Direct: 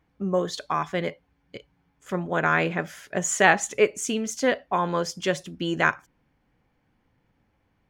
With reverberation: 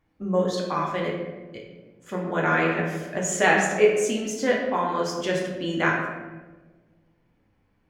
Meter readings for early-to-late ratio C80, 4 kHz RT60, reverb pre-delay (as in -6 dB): 5.0 dB, 0.75 s, 3 ms